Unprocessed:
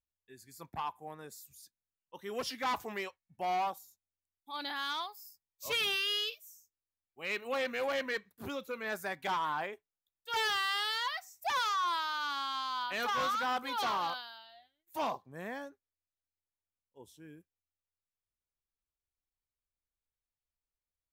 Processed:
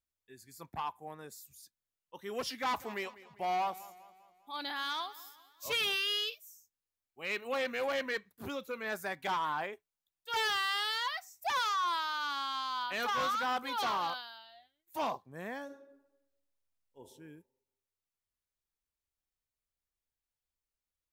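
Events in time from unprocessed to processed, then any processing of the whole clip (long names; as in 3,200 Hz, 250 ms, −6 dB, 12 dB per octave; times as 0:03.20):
0:02.56–0:05.93: feedback echo with a swinging delay time 199 ms, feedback 49%, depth 62 cents, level −18.5 dB
0:15.64–0:17.01: thrown reverb, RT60 0.96 s, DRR 2 dB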